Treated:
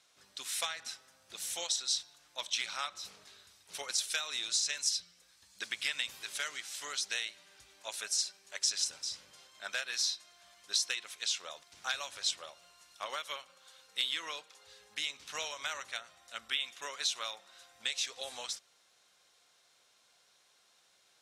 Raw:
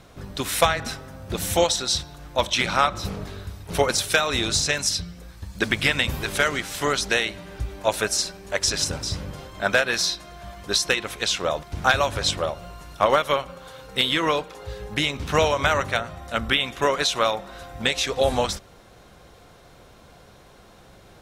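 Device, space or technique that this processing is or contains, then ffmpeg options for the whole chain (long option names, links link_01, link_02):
piezo pickup straight into a mixer: -af "lowpass=7100,aderivative,volume=-4dB"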